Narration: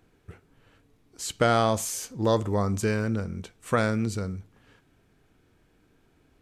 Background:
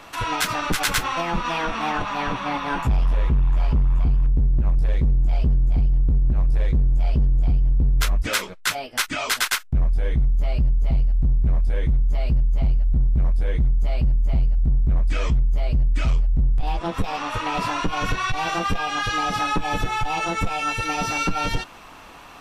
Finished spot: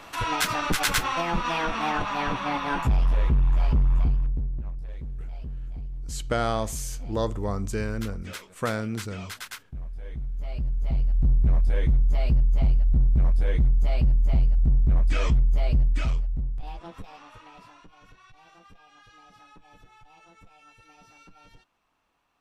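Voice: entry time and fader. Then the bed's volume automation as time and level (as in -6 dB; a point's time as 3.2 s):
4.90 s, -4.0 dB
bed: 4.01 s -2 dB
4.81 s -16.5 dB
9.95 s -16.5 dB
11.29 s -1 dB
15.78 s -1 dB
17.98 s -30 dB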